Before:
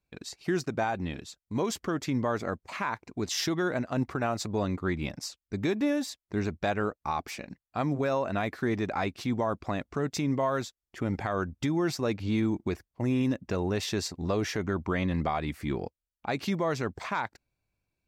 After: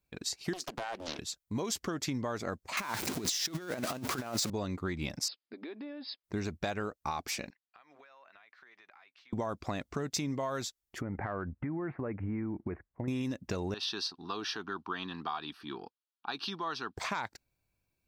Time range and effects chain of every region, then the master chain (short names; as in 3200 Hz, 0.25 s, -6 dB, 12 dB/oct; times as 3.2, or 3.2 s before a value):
0.53–1.19 HPF 300 Hz 24 dB/oct + compressor 12:1, threshold -33 dBFS + Doppler distortion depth 0.97 ms
2.77–4.5 zero-crossing step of -35 dBFS + HPF 140 Hz + negative-ratio compressor -33 dBFS, ratio -0.5
5.28–6.24 brick-wall FIR band-pass 220–5200 Hz + compressor 4:1, threshold -43 dBFS
7.5–9.33 HPF 1500 Hz + compressor 20:1, threshold -52 dBFS + air absorption 230 m
11.01–13.08 steep low-pass 2100 Hz 48 dB/oct + compressor, threshold -30 dBFS
13.74–16.97 BPF 400–5500 Hz + fixed phaser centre 2100 Hz, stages 6
whole clip: dynamic EQ 5300 Hz, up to +6 dB, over -52 dBFS, Q 0.73; compressor, threshold -31 dBFS; high shelf 9700 Hz +8 dB